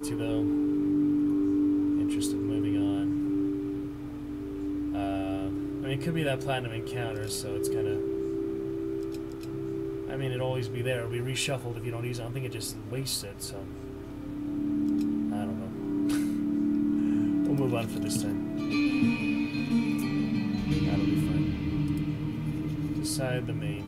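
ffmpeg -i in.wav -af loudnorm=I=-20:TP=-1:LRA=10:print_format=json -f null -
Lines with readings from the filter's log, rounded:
"input_i" : "-29.9",
"input_tp" : "-13.8",
"input_lra" : "4.7",
"input_thresh" : "-39.9",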